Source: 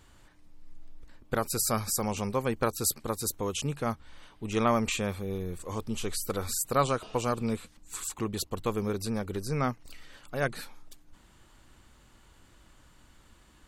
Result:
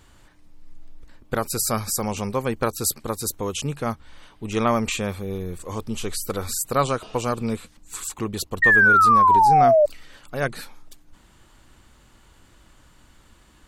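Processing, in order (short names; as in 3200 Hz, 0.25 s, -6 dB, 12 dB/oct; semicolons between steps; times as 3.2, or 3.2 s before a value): painted sound fall, 8.62–9.86, 580–1900 Hz -19 dBFS; gain +4.5 dB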